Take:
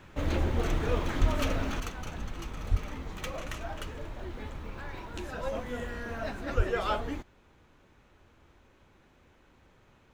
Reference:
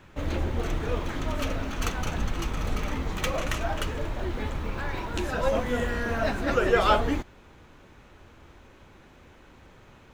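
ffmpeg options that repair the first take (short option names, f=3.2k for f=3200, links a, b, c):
-filter_complex "[0:a]asplit=3[a][b][c];[a]afade=t=out:st=1.2:d=0.02[d];[b]highpass=f=140:w=0.5412,highpass=f=140:w=1.3066,afade=t=in:st=1.2:d=0.02,afade=t=out:st=1.32:d=0.02[e];[c]afade=t=in:st=1.32:d=0.02[f];[d][e][f]amix=inputs=3:normalize=0,asplit=3[g][h][i];[g]afade=t=out:st=2.7:d=0.02[j];[h]highpass=f=140:w=0.5412,highpass=f=140:w=1.3066,afade=t=in:st=2.7:d=0.02,afade=t=out:st=2.82:d=0.02[k];[i]afade=t=in:st=2.82:d=0.02[l];[j][k][l]amix=inputs=3:normalize=0,asplit=3[m][n][o];[m]afade=t=out:st=6.56:d=0.02[p];[n]highpass=f=140:w=0.5412,highpass=f=140:w=1.3066,afade=t=in:st=6.56:d=0.02,afade=t=out:st=6.68:d=0.02[q];[o]afade=t=in:st=6.68:d=0.02[r];[p][q][r]amix=inputs=3:normalize=0,asetnsamples=n=441:p=0,asendcmd='1.8 volume volume 9dB',volume=0dB"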